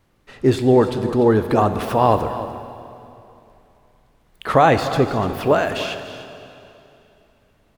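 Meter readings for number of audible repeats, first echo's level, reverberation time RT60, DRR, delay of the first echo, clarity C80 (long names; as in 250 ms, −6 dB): 1, −13.5 dB, 2.9 s, 7.5 dB, 295 ms, 9.0 dB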